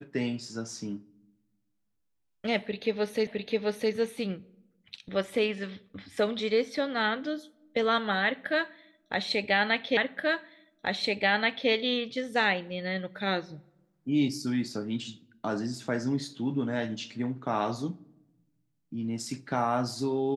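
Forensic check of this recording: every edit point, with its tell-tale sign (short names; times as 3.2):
3.27 repeat of the last 0.66 s
9.97 repeat of the last 1.73 s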